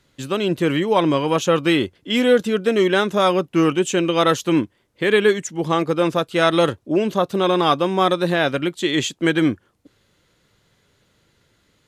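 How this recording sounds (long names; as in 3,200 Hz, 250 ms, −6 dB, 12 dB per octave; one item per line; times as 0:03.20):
background noise floor −63 dBFS
spectral slope −4.0 dB per octave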